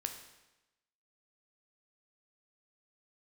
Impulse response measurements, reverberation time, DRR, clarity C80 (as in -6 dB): 1.0 s, 5.0 dB, 10.0 dB